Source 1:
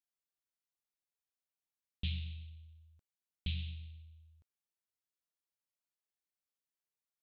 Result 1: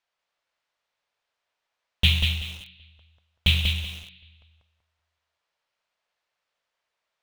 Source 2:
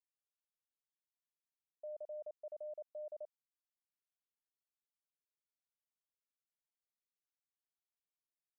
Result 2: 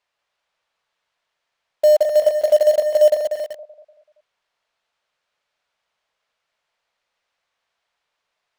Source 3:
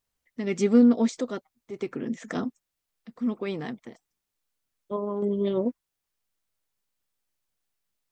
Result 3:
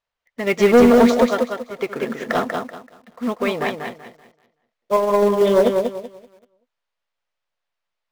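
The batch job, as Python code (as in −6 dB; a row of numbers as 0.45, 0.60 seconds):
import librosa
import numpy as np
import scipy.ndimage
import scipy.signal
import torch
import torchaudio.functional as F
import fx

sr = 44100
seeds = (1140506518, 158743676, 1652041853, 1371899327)

p1 = scipy.signal.sosfilt(scipy.signal.butter(2, 3500.0, 'lowpass', fs=sr, output='sos'), x)
p2 = fx.low_shelf_res(p1, sr, hz=430.0, db=-9.5, q=1.5)
p3 = fx.notch(p2, sr, hz=780.0, q=21.0)
p4 = p3 + fx.echo_feedback(p3, sr, ms=191, feedback_pct=38, wet_db=-4.0, dry=0)
p5 = 10.0 ** (-24.5 / 20.0) * np.tanh(p4 / 10.0 ** (-24.5 / 20.0))
p6 = fx.quant_companded(p5, sr, bits=4)
p7 = p5 + (p6 * 10.0 ** (-8.0 / 20.0))
p8 = fx.upward_expand(p7, sr, threshold_db=-49.0, expansion=1.5)
y = librosa.util.normalize(p8) * 10.0 ** (-6 / 20.0)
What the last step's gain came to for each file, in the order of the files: +23.0, +29.5, +15.5 decibels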